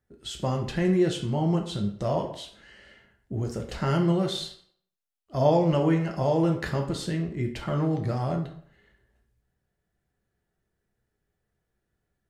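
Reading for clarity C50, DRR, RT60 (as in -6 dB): 8.5 dB, 2.5 dB, 0.60 s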